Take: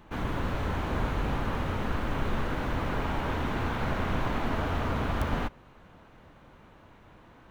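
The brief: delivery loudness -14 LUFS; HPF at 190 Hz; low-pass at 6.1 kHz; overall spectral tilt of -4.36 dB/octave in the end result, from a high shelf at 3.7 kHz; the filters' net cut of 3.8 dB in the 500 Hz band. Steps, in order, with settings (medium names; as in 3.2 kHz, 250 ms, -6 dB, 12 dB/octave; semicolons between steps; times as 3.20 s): high-pass 190 Hz; low-pass 6.1 kHz; peaking EQ 500 Hz -4.5 dB; treble shelf 3.7 kHz -8 dB; trim +21.5 dB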